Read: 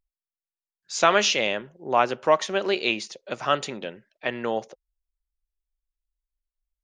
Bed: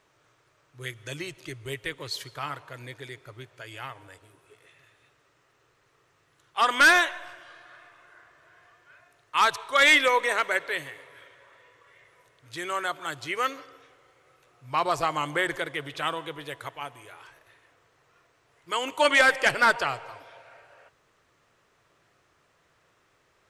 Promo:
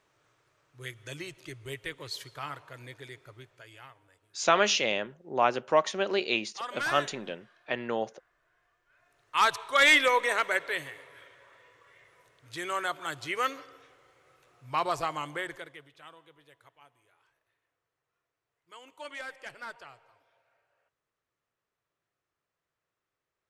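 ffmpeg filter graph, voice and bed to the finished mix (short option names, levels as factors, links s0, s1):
-filter_complex "[0:a]adelay=3450,volume=0.631[s0];[1:a]volume=2.66,afade=t=out:st=3.21:d=0.79:silence=0.298538,afade=t=in:st=8.89:d=0.54:silence=0.223872,afade=t=out:st=14.6:d=1.31:silence=0.105925[s1];[s0][s1]amix=inputs=2:normalize=0"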